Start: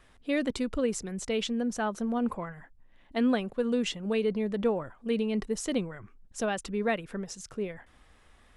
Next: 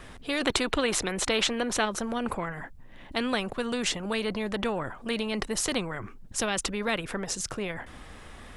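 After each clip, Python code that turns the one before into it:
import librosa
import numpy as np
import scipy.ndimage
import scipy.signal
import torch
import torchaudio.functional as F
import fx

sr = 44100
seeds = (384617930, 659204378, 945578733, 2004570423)

y = fx.spec_box(x, sr, start_s=0.41, length_s=1.44, low_hz=260.0, high_hz=4300.0, gain_db=8)
y = fx.low_shelf(y, sr, hz=430.0, db=4.5)
y = fx.spectral_comp(y, sr, ratio=2.0)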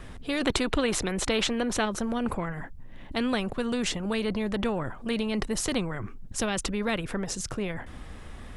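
y = fx.low_shelf(x, sr, hz=310.0, db=8.0)
y = y * librosa.db_to_amplitude(-2.0)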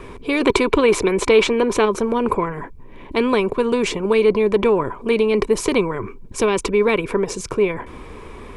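y = fx.small_body(x, sr, hz=(410.0, 990.0, 2300.0), ring_ms=25, db=16)
y = y * librosa.db_to_amplitude(2.5)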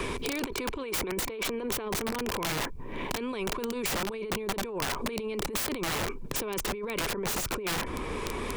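y = fx.over_compress(x, sr, threshold_db=-26.0, ratio=-1.0)
y = (np.mod(10.0 ** (19.0 / 20.0) * y + 1.0, 2.0) - 1.0) / 10.0 ** (19.0 / 20.0)
y = fx.band_squash(y, sr, depth_pct=70)
y = y * librosa.db_to_amplitude(-6.0)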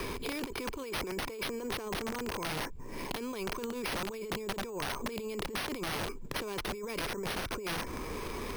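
y = np.repeat(x[::6], 6)[:len(x)]
y = y * librosa.db_to_amplitude(-4.5)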